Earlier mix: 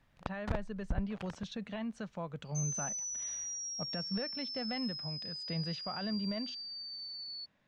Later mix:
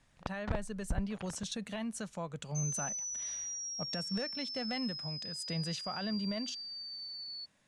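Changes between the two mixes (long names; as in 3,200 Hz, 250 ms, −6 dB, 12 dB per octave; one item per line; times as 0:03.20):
speech: remove high-frequency loss of the air 210 metres
first sound: add high-frequency loss of the air 60 metres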